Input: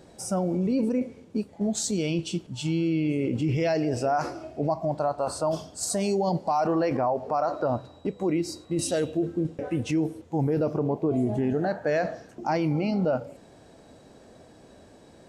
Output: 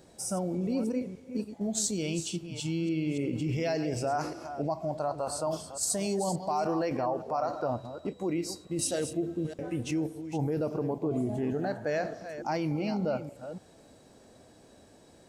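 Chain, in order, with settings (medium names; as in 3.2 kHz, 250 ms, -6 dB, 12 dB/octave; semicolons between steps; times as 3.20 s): chunks repeated in reverse 289 ms, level -10.5 dB; treble shelf 5.6 kHz +8.5 dB; trim -5.5 dB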